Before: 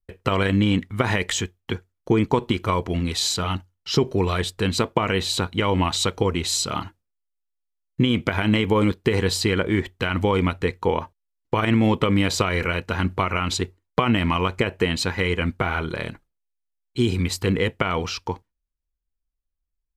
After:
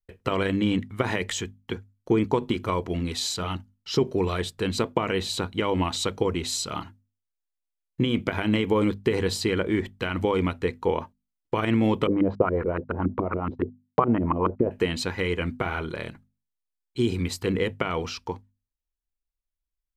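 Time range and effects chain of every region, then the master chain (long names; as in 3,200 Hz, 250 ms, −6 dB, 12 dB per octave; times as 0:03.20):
0:12.07–0:14.71: auto-filter low-pass saw up 7.1 Hz 290–1,500 Hz + noise gate −35 dBFS, range −33 dB + high-frequency loss of the air 99 metres
whole clip: mains-hum notches 50/100/150/200/250 Hz; dynamic equaliser 360 Hz, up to +4 dB, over −30 dBFS, Q 0.76; level −5.5 dB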